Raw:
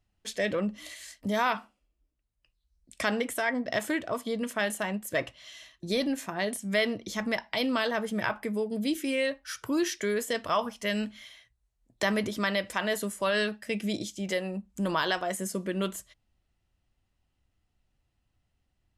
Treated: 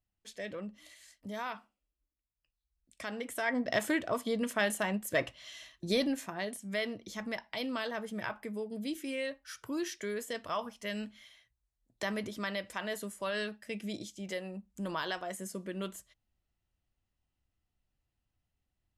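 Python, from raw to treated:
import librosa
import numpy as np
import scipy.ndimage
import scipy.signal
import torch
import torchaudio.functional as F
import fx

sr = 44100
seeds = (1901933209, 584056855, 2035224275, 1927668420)

y = fx.gain(x, sr, db=fx.line((3.09, -12.0), (3.59, -1.0), (5.96, -1.0), (6.53, -8.0)))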